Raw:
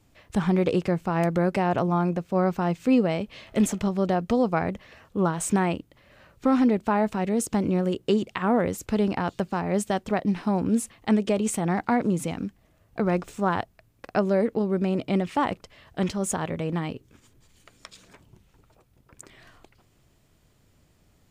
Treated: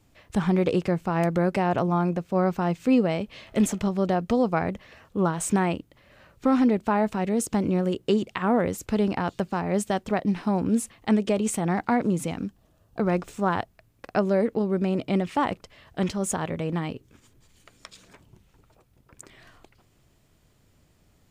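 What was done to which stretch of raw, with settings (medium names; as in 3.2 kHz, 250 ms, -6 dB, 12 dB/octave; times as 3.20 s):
12.47–13.00 s: peaking EQ 2.1 kHz -11.5 dB 0.41 oct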